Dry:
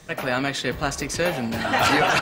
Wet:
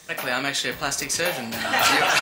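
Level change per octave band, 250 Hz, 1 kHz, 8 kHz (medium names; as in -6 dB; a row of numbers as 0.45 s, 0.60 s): -6.0 dB, -1.0 dB, +6.0 dB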